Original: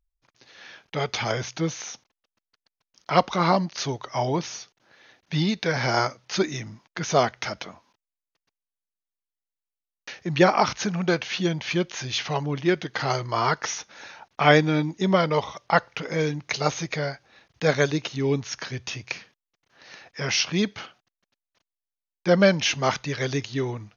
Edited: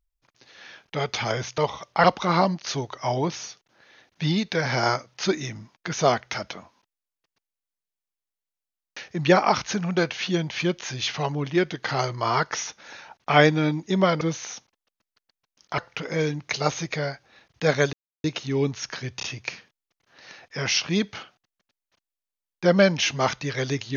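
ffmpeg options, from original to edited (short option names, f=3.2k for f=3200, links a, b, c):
-filter_complex "[0:a]asplit=8[a][b][c][d][e][f][g][h];[a]atrim=end=1.582[i];[b]atrim=start=15.318:end=15.782[j];[c]atrim=start=3.148:end=15.322[k];[d]atrim=start=1.578:end=3.152[l];[e]atrim=start=15.778:end=17.93,asetpts=PTS-STARTPTS,afade=t=out:st=2.148:d=0.004:c=hsin,apad=pad_dur=0.31[m];[f]atrim=start=17.93:end=18.892,asetpts=PTS-STARTPTS,afade=t=in:d=0.004:c=hsin[n];[g]atrim=start=18.858:end=18.892[o];[h]atrim=start=18.858[p];[i][j]acrossfade=d=0.004:c1=hsin:c2=hsin[q];[q][k]acrossfade=d=0.004:c1=hsin:c2=hsin[r];[r][l]acrossfade=d=0.004:c1=hsin:c2=hsin[s];[m][n]concat=n=2:v=0:a=1[t];[s][t]acrossfade=d=0.004:c1=hsin:c2=hsin[u];[u][o]acrossfade=d=0.004:c1=hsin:c2=hsin[v];[v][p]acrossfade=d=0.004:c1=hsin:c2=hsin"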